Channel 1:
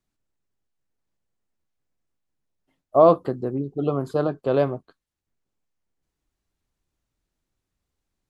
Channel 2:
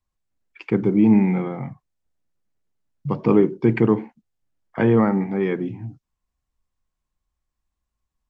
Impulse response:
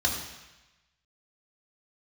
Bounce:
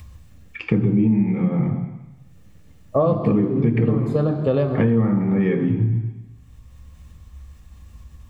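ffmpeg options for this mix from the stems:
-filter_complex "[0:a]volume=3dB,asplit=2[link_01][link_02];[link_02]volume=-14.5dB[link_03];[1:a]acompressor=mode=upward:threshold=-33dB:ratio=2.5,volume=2dB,asplit=2[link_04][link_05];[link_05]volume=-12dB[link_06];[2:a]atrim=start_sample=2205[link_07];[link_03][link_06]amix=inputs=2:normalize=0[link_08];[link_08][link_07]afir=irnorm=-1:irlink=0[link_09];[link_01][link_04][link_09]amix=inputs=3:normalize=0,equalizer=frequency=110:width_type=o:width=2.7:gain=10.5,acompressor=threshold=-15dB:ratio=8"

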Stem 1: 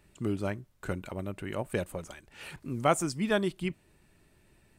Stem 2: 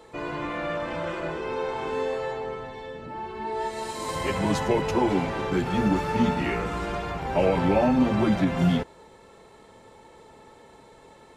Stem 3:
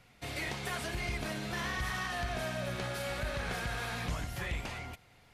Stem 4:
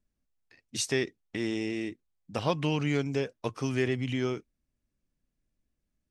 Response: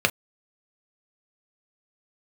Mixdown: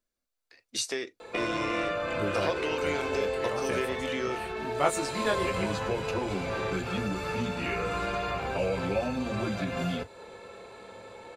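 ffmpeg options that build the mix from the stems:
-filter_complex "[0:a]flanger=delay=18.5:depth=5.4:speed=0.4,adelay=1950,volume=0dB[link_01];[1:a]acrossover=split=160|4600[link_02][link_03][link_04];[link_02]acompressor=threshold=-37dB:ratio=4[link_05];[link_03]acompressor=threshold=-35dB:ratio=4[link_06];[link_04]acompressor=threshold=-49dB:ratio=4[link_07];[link_05][link_06][link_07]amix=inputs=3:normalize=0,adelay=1200,volume=-8dB,asplit=2[link_08][link_09];[link_09]volume=-4dB[link_10];[2:a]lowpass=7000,adelay=2200,volume=-12dB[link_11];[3:a]bass=frequency=250:gain=-8,treble=frequency=4000:gain=3,acompressor=threshold=-31dB:ratio=6,volume=-2.5dB,asplit=2[link_12][link_13];[link_13]volume=-14dB[link_14];[4:a]atrim=start_sample=2205[link_15];[link_10][link_14]amix=inputs=2:normalize=0[link_16];[link_16][link_15]afir=irnorm=-1:irlink=0[link_17];[link_01][link_08][link_11][link_12][link_17]amix=inputs=5:normalize=0,equalizer=frequency=150:width=0.6:gain=-7.5,dynaudnorm=framelen=270:gausssize=3:maxgain=3dB"

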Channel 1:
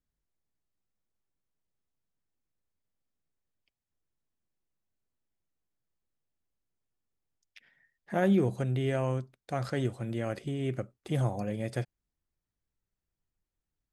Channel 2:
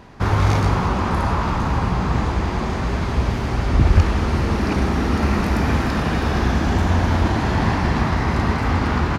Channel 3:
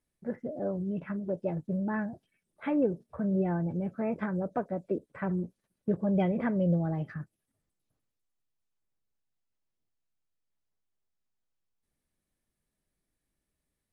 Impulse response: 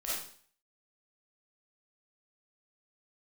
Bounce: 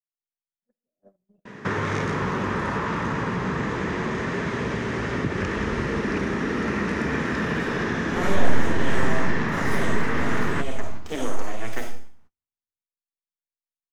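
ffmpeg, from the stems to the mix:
-filter_complex "[0:a]highpass=63,equalizer=frequency=6400:width_type=o:width=1.1:gain=13.5,aeval=exprs='abs(val(0))':channel_layout=same,volume=2dB,asplit=2[link_01][link_02];[link_02]volume=-4dB[link_03];[1:a]adelay=1450,volume=2.5dB,asplit=2[link_04][link_05];[link_05]volume=-23dB[link_06];[2:a]bandreject=frequency=110.7:width_type=h:width=4,bandreject=frequency=221.4:width_type=h:width=4,bandreject=frequency=332.1:width_type=h:width=4,bandreject=frequency=442.8:width_type=h:width=4,bandreject=frequency=553.5:width_type=h:width=4,bandreject=frequency=664.2:width_type=h:width=4,bandreject=frequency=774.9:width_type=h:width=4,bandreject=frequency=885.6:width_type=h:width=4,bandreject=frequency=996.3:width_type=h:width=4,bandreject=frequency=1107:width_type=h:width=4,bandreject=frequency=1217.7:width_type=h:width=4,bandreject=frequency=1328.4:width_type=h:width=4,alimiter=level_in=1.5dB:limit=-24dB:level=0:latency=1:release=332,volume=-1.5dB,adelay=400,volume=-18.5dB,asplit=3[link_07][link_08][link_09];[link_08]volume=-7dB[link_10];[link_09]volume=-9.5dB[link_11];[link_01][link_04]amix=inputs=2:normalize=0,highpass=frequency=130:width=0.5412,highpass=frequency=130:width=1.3066,equalizer=frequency=440:width_type=q:width=4:gain=6,equalizer=frequency=760:width_type=q:width=4:gain=-9,equalizer=frequency=1800:width_type=q:width=4:gain=8,equalizer=frequency=4500:width_type=q:width=4:gain=-7,lowpass=frequency=8400:width=0.5412,lowpass=frequency=8400:width=1.3066,acompressor=threshold=-26dB:ratio=2.5,volume=0dB[link_12];[3:a]atrim=start_sample=2205[link_13];[link_03][link_10]amix=inputs=2:normalize=0[link_14];[link_14][link_13]afir=irnorm=-1:irlink=0[link_15];[link_06][link_11]amix=inputs=2:normalize=0,aecho=0:1:368|736|1104|1472|1840|2208:1|0.44|0.194|0.0852|0.0375|0.0165[link_16];[link_07][link_12][link_15][link_16]amix=inputs=4:normalize=0,agate=range=-35dB:threshold=-46dB:ratio=16:detection=peak"

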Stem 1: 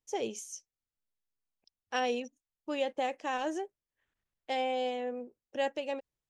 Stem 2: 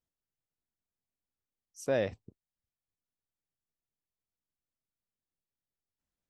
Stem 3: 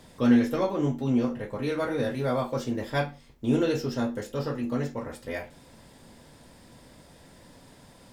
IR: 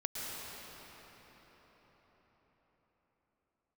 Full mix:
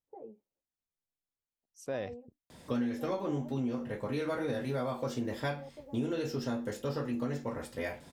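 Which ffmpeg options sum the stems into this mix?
-filter_complex "[0:a]lowpass=frequency=1000:width=0.5412,lowpass=frequency=1000:width=1.3066,acompressor=threshold=-35dB:ratio=3,asplit=2[link_01][link_02];[link_02]adelay=10.9,afreqshift=-0.37[link_03];[link_01][link_03]amix=inputs=2:normalize=1,volume=-6.5dB[link_04];[1:a]volume=-6dB[link_05];[2:a]highpass=50,adelay=2500,volume=-1.5dB[link_06];[link_04][link_05][link_06]amix=inputs=3:normalize=0,acompressor=threshold=-30dB:ratio=6"

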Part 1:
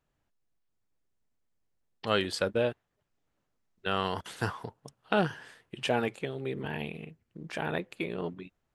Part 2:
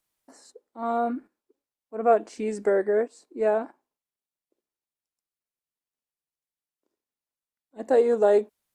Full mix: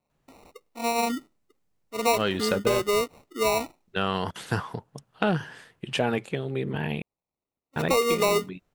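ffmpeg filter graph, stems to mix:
ffmpeg -i stem1.wav -i stem2.wav -filter_complex "[0:a]equalizer=frequency=160:width=1.5:gain=5,acontrast=83,adelay=100,volume=-3dB,asplit=3[link_01][link_02][link_03];[link_01]atrim=end=7.02,asetpts=PTS-STARTPTS,afade=type=out:start_time=7.016:duration=0.004:curve=hsin[link_04];[link_02]atrim=start=7.02:end=7.76,asetpts=PTS-STARTPTS,volume=0[link_05];[link_03]atrim=start=7.76,asetpts=PTS-STARTPTS,afade=type=in:duration=0.004:curve=hsin[link_06];[link_04][link_05][link_06]concat=n=3:v=0:a=1[link_07];[1:a]acrusher=samples=27:mix=1:aa=0.000001,volume=1dB[link_08];[link_07][link_08]amix=inputs=2:normalize=0,acompressor=threshold=-19dB:ratio=6" out.wav

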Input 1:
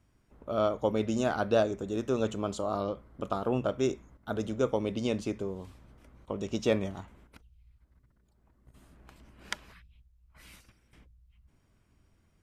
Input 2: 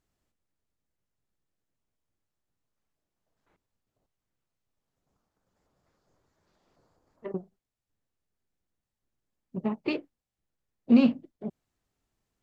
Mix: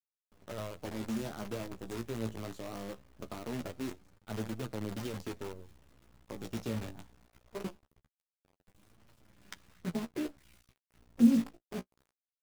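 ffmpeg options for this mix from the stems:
ffmpeg -i stem1.wav -i stem2.wav -filter_complex "[0:a]equalizer=frequency=100:width=0.37:gain=6.5,volume=-6.5dB[link_01];[1:a]lowpass=1900,adelay=300,volume=1.5dB[link_02];[link_01][link_02]amix=inputs=2:normalize=0,acrossover=split=280[link_03][link_04];[link_04]acompressor=threshold=-37dB:ratio=10[link_05];[link_03][link_05]amix=inputs=2:normalize=0,acrusher=bits=7:dc=4:mix=0:aa=0.000001,flanger=delay=8.5:depth=9.6:regen=20:speed=0.22:shape=triangular" out.wav

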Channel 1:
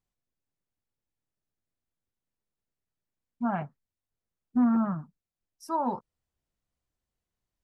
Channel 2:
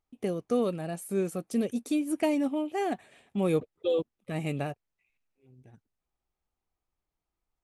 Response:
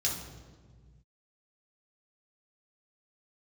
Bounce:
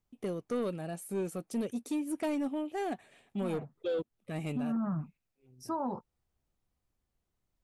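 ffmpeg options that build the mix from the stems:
-filter_complex "[0:a]tiltshelf=frequency=670:gain=3.5,bandreject=frequency=900:width=26,volume=1.5dB[link_01];[1:a]asoftclip=type=tanh:threshold=-22.5dB,volume=-3.5dB,asplit=2[link_02][link_03];[link_03]apad=whole_len=336579[link_04];[link_01][link_04]sidechaincompress=threshold=-45dB:ratio=8:attack=16:release=171[link_05];[link_05][link_02]amix=inputs=2:normalize=0,alimiter=level_in=2.5dB:limit=-24dB:level=0:latency=1:release=134,volume=-2.5dB"

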